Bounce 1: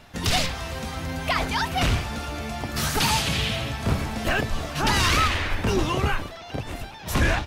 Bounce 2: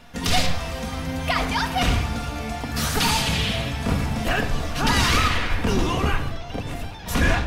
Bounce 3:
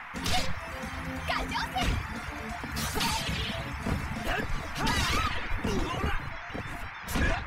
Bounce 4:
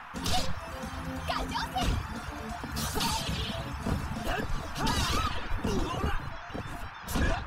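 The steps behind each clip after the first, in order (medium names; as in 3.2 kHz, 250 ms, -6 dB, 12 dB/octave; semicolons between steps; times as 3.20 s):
simulated room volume 2900 m³, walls furnished, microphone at 1.8 m
reverb removal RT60 0.82 s; band noise 790–2300 Hz -35 dBFS; trim -7 dB
peaking EQ 2.1 kHz -11 dB 0.44 oct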